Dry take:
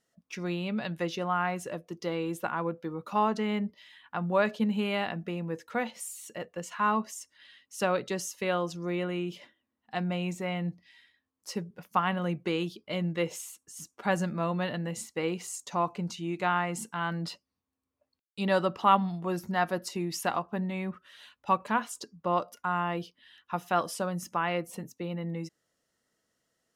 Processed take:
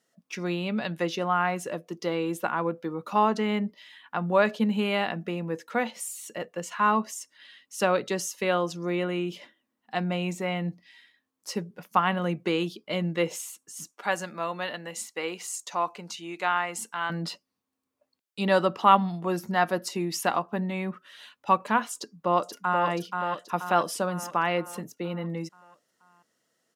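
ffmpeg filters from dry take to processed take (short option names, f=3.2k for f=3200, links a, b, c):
-filter_complex "[0:a]asettb=1/sr,asplit=3[a][b][c];[a]atrim=end=13.914[d];[b]atrim=start=13.91:end=17.1,asetpts=PTS-STARTPTS,afade=t=in:d=0.004:c=qsin,afade=t=out:st=3.186:d=0.004:c=qsin,highpass=f=780:p=1[e];[c]atrim=start=17.096[f];[d][e]acrossfade=d=0.004:c1=hsin:c2=qsin[g];[g][f]acrossfade=d=0.004:c1=qsin:c2=hsin,asplit=2[h][i];[i]afade=t=in:st=21.95:d=0.01,afade=t=out:st=22.86:d=0.01,aecho=0:1:480|960|1440|1920|2400|2880|3360:0.595662|0.327614|0.180188|0.0991033|0.0545068|0.0299787|0.0164883[j];[h][j]amix=inputs=2:normalize=0,highpass=160,volume=4dB"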